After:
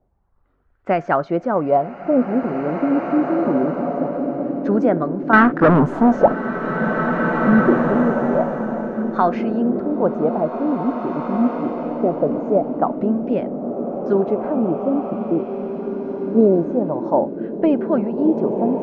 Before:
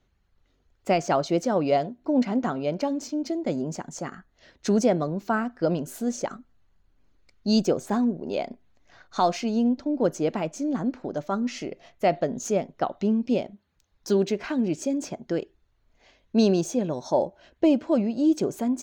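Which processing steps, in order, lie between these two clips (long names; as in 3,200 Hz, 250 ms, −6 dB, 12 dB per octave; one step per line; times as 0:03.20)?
0:05.33–0:06.33: leveller curve on the samples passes 5
auto-filter low-pass sine 0.24 Hz 290–1,600 Hz
slow-attack reverb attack 2,180 ms, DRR 3 dB
level +2.5 dB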